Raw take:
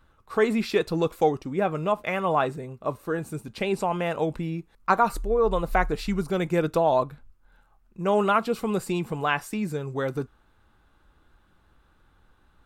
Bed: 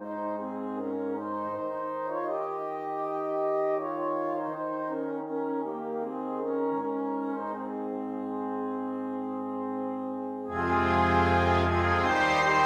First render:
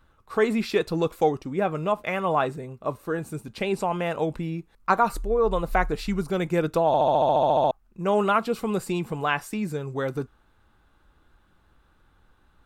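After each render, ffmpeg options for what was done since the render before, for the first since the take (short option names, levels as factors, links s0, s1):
-filter_complex "[0:a]asplit=13[s0][s1][s2][s3][s4][s5][s6][s7][s8][s9][s10][s11][s12];[s0]atrim=end=6.942[s13];[s1]atrim=start=6.868:end=6.942[s14];[s2]atrim=start=6.868:end=6.942[s15];[s3]atrim=start=6.868:end=6.942[s16];[s4]atrim=start=6.868:end=6.942[s17];[s5]atrim=start=6.868:end=6.942[s18];[s6]atrim=start=6.868:end=6.942[s19];[s7]atrim=start=6.868:end=6.942[s20];[s8]atrim=start=6.868:end=6.942[s21];[s9]atrim=start=6.868:end=6.942[s22];[s10]atrim=start=6.868:end=6.942[s23];[s11]atrim=start=6.868:end=6.942[s24];[s12]atrim=start=7.708[s25];[s13][s14]acrossfade=d=0.004:c1=hsin:c2=hsin[s26];[s26][s15]acrossfade=d=0.004:c1=hsin:c2=hsin[s27];[s27][s16]acrossfade=d=0.004:c1=hsin:c2=hsin[s28];[s28][s17]acrossfade=d=0.004:c1=hsin:c2=hsin[s29];[s29][s18]acrossfade=d=0.004:c1=hsin:c2=hsin[s30];[s30][s19]acrossfade=d=0.004:c1=hsin:c2=hsin[s31];[s31][s20]acrossfade=d=0.004:c1=hsin:c2=hsin[s32];[s32][s21]acrossfade=d=0.004:c1=hsin:c2=hsin[s33];[s33][s22]acrossfade=d=0.004:c1=hsin:c2=hsin[s34];[s34][s23]acrossfade=d=0.004:c1=hsin:c2=hsin[s35];[s35][s24]acrossfade=d=0.004:c1=hsin:c2=hsin[s36];[s36][s25]acrossfade=d=0.004:c1=hsin:c2=hsin"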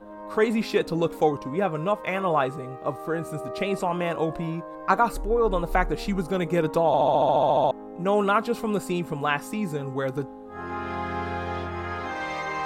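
-filter_complex "[1:a]volume=0.473[s0];[0:a][s0]amix=inputs=2:normalize=0"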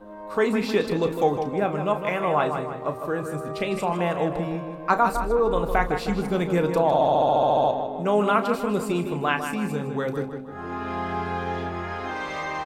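-filter_complex "[0:a]asplit=2[s0][s1];[s1]adelay=34,volume=0.282[s2];[s0][s2]amix=inputs=2:normalize=0,asplit=2[s3][s4];[s4]adelay=156,lowpass=f=4200:p=1,volume=0.422,asplit=2[s5][s6];[s6]adelay=156,lowpass=f=4200:p=1,volume=0.51,asplit=2[s7][s8];[s8]adelay=156,lowpass=f=4200:p=1,volume=0.51,asplit=2[s9][s10];[s10]adelay=156,lowpass=f=4200:p=1,volume=0.51,asplit=2[s11][s12];[s12]adelay=156,lowpass=f=4200:p=1,volume=0.51,asplit=2[s13][s14];[s14]adelay=156,lowpass=f=4200:p=1,volume=0.51[s15];[s3][s5][s7][s9][s11][s13][s15]amix=inputs=7:normalize=0"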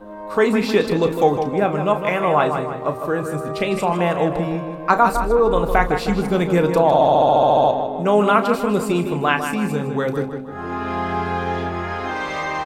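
-af "volume=1.88,alimiter=limit=0.794:level=0:latency=1"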